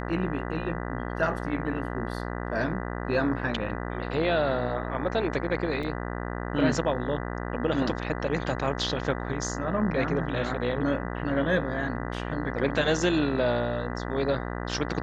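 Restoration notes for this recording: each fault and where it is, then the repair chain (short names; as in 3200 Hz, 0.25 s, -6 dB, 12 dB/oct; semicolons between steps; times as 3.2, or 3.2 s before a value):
buzz 60 Hz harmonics 33 -33 dBFS
5.83 gap 3.7 ms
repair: de-hum 60 Hz, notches 33; interpolate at 5.83, 3.7 ms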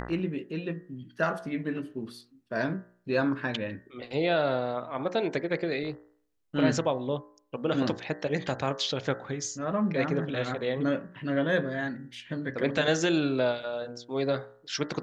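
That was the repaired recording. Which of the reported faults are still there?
none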